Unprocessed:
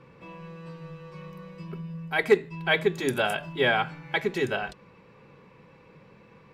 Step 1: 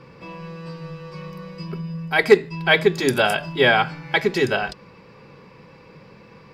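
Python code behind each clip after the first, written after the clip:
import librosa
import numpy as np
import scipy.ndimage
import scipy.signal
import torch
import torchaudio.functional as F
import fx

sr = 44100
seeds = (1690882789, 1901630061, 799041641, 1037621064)

y = fx.peak_eq(x, sr, hz=4900.0, db=12.0, octaves=0.26)
y = F.gain(torch.from_numpy(y), 7.0).numpy()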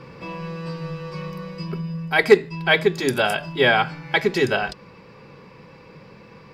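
y = fx.rider(x, sr, range_db=5, speed_s=2.0)
y = F.gain(torch.from_numpy(y), -1.0).numpy()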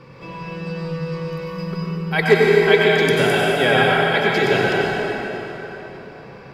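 y = fx.rev_plate(x, sr, seeds[0], rt60_s=4.0, hf_ratio=0.7, predelay_ms=80, drr_db=-5.0)
y = F.gain(torch.from_numpy(y), -2.5).numpy()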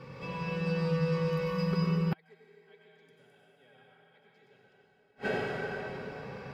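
y = fx.gate_flip(x, sr, shuts_db=-14.0, range_db=-41)
y = fx.notch_comb(y, sr, f0_hz=340.0)
y = F.gain(torch.from_numpy(y), -3.0).numpy()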